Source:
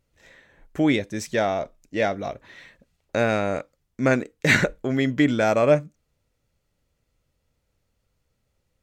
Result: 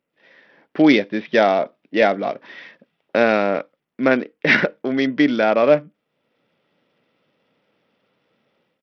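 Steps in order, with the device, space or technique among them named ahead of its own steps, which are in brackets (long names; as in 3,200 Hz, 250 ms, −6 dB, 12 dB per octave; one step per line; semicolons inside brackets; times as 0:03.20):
Bluetooth headset (high-pass filter 190 Hz 24 dB per octave; automatic gain control gain up to 14 dB; downsampling to 8,000 Hz; level −1 dB; SBC 64 kbit/s 44,100 Hz)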